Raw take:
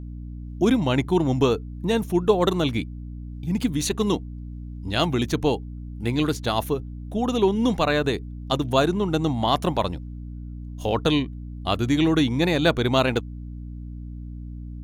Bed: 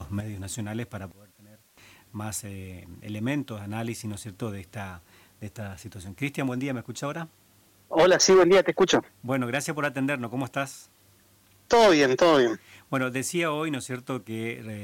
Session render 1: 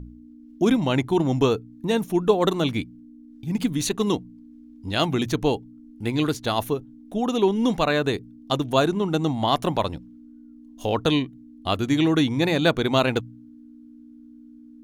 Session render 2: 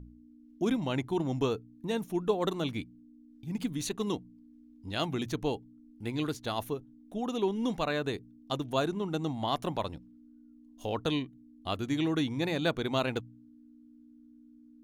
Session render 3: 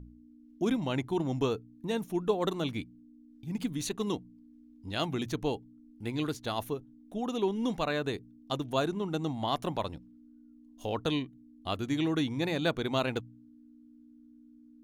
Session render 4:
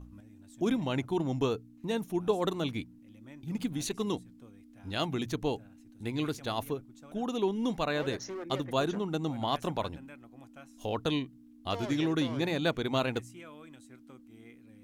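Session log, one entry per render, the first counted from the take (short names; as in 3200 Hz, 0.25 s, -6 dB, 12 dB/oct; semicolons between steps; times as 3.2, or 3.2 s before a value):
de-hum 60 Hz, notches 3
gain -9.5 dB
nothing audible
add bed -23 dB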